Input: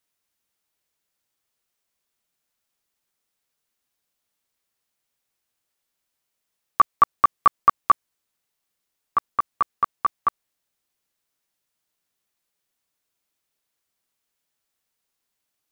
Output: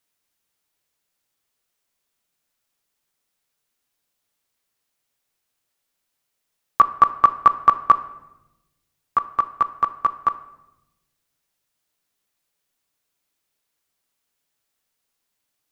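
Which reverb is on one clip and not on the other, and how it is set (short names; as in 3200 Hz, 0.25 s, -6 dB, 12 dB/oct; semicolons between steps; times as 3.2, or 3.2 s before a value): shoebox room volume 400 m³, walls mixed, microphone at 0.31 m; gain +2 dB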